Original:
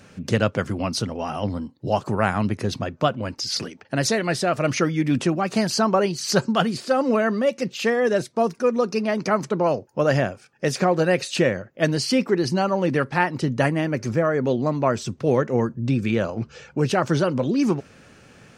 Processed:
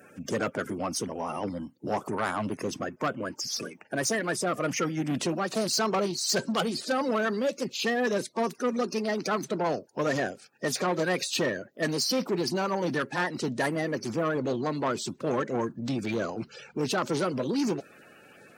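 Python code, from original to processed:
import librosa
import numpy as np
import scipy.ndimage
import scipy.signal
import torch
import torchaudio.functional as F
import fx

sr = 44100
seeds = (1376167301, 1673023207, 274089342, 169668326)

y = fx.spec_quant(x, sr, step_db=30)
y = fx.peak_eq(y, sr, hz=4100.0, db=fx.steps((0.0, -12.5), (5.14, 4.0)), octaves=0.4)
y = 10.0 ** (-18.0 / 20.0) * np.tanh(y / 10.0 ** (-18.0 / 20.0))
y = scipy.signal.sosfilt(scipy.signal.butter(2, 170.0, 'highpass', fs=sr, output='sos'), y)
y = fx.high_shelf(y, sr, hz=9400.0, db=10.5)
y = y * librosa.db_to_amplitude(-3.0)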